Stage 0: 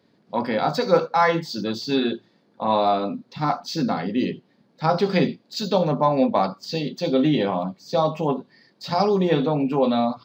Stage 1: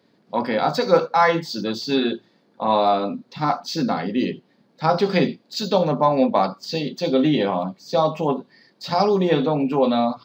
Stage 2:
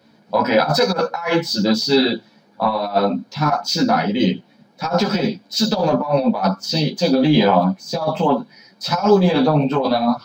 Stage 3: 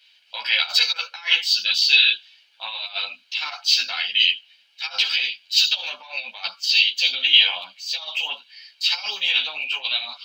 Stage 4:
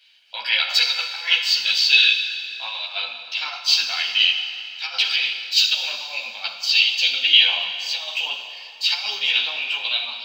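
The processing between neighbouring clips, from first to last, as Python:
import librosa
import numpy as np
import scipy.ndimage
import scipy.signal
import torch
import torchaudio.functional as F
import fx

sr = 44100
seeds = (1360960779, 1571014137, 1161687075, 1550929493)

y1 = fx.low_shelf(x, sr, hz=80.0, db=-11.5)
y1 = y1 * 10.0 ** (2.0 / 20.0)
y2 = y1 + 0.44 * np.pad(y1, (int(1.3 * sr / 1000.0), 0))[:len(y1)]
y2 = fx.over_compress(y2, sr, threshold_db=-20.0, ratio=-0.5)
y2 = fx.ensemble(y2, sr)
y2 = y2 * 10.0 ** (8.0 / 20.0)
y3 = fx.highpass_res(y2, sr, hz=2800.0, q=7.7)
y4 = fx.rev_plate(y3, sr, seeds[0], rt60_s=3.0, hf_ratio=0.8, predelay_ms=0, drr_db=5.5)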